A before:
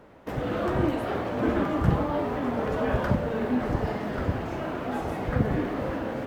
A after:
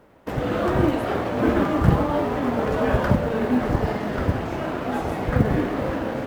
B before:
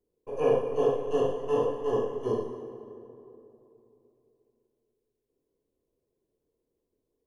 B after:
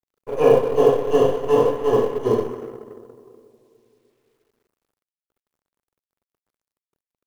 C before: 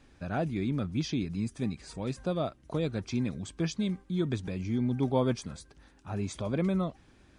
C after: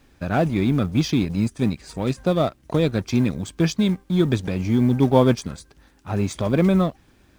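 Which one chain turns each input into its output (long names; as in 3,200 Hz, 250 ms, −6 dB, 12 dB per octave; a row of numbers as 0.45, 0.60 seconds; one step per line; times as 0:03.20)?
mu-law and A-law mismatch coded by A
normalise the peak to −3 dBFS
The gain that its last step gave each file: +6.0, +10.5, +12.0 decibels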